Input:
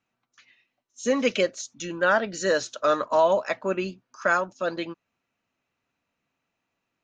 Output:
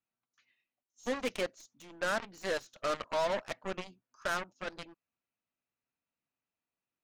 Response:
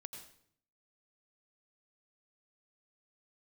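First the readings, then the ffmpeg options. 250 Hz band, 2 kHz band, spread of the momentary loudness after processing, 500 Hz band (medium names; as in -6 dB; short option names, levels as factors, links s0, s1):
-13.0 dB, -10.5 dB, 17 LU, -12.0 dB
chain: -af "aeval=exprs='0.335*(cos(1*acos(clip(val(0)/0.335,-1,1)))-cos(1*PI/2))+0.0944*(cos(2*acos(clip(val(0)/0.335,-1,1)))-cos(2*PI/2))+0.0188*(cos(6*acos(clip(val(0)/0.335,-1,1)))-cos(6*PI/2))+0.0596*(cos(7*acos(clip(val(0)/0.335,-1,1)))-cos(7*PI/2))+0.0133*(cos(8*acos(clip(val(0)/0.335,-1,1)))-cos(8*PI/2))':c=same,asoftclip=type=tanh:threshold=0.075,highshelf=f=7800:g=-4,volume=0.708"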